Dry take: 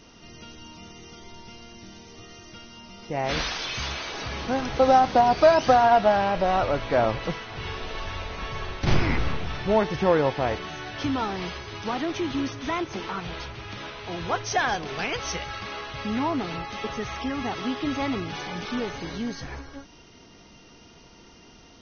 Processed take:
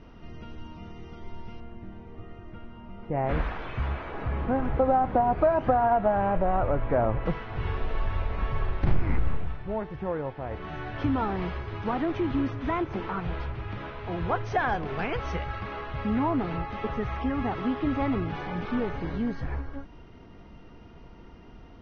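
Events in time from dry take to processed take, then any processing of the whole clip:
1.60–7.26 s: peaking EQ 5.2 kHz -14.5 dB 1.4 oct
9.32–10.74 s: dip -11 dB, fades 0.25 s
whole clip: low-pass 1.8 kHz 12 dB/octave; bass shelf 100 Hz +11.5 dB; compression 2.5:1, threshold -21 dBFS

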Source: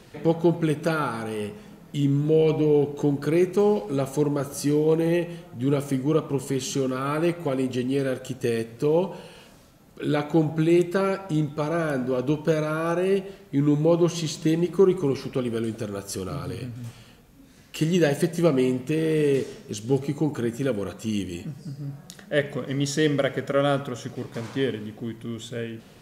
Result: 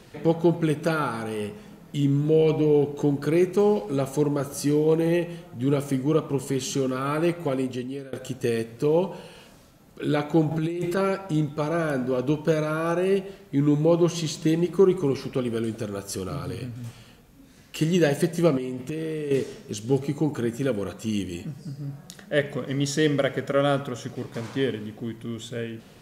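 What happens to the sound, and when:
7.53–8.13 s: fade out, to -23 dB
10.51–10.97 s: compressor with a negative ratio -26 dBFS
18.57–19.31 s: compression 12:1, threshold -26 dBFS

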